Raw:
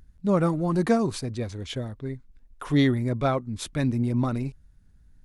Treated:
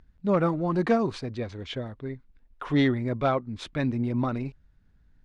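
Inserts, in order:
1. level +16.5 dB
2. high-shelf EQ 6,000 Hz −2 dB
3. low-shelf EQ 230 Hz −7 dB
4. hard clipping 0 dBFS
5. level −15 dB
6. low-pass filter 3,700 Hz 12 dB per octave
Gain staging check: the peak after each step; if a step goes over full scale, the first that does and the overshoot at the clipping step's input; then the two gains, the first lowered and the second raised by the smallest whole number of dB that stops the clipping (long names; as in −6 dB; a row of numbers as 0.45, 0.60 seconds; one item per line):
+6.5, +6.5, +3.5, 0.0, −15.0, −14.5 dBFS
step 1, 3.5 dB
step 1 +12.5 dB, step 5 −11 dB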